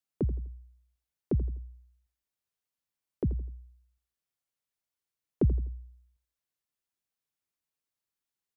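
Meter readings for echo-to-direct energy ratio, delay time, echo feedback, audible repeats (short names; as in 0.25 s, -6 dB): -13.5 dB, 83 ms, 33%, 3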